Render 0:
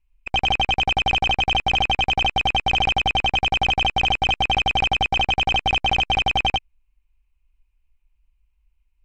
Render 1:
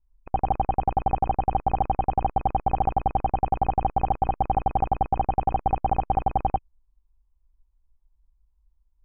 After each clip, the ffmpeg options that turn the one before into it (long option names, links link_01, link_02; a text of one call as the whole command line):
ffmpeg -i in.wav -af "lowpass=frequency=1100:width=0.5412,lowpass=frequency=1100:width=1.3066" out.wav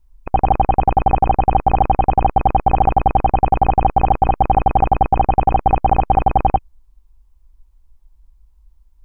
ffmpeg -i in.wav -af "alimiter=level_in=15.5dB:limit=-1dB:release=50:level=0:latency=1,volume=-1dB" out.wav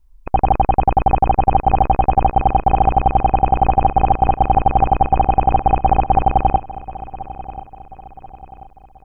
ffmpeg -i in.wav -af "aecho=1:1:1036|2072|3108|4144:0.15|0.0628|0.0264|0.0111" out.wav